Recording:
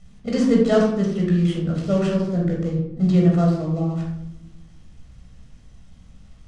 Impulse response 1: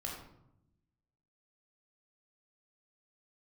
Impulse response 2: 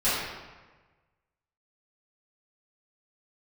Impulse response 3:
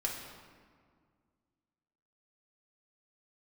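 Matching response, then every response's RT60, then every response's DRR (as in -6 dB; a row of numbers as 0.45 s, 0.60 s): 1; 0.80 s, 1.3 s, 1.9 s; -2.0 dB, -15.0 dB, -2.5 dB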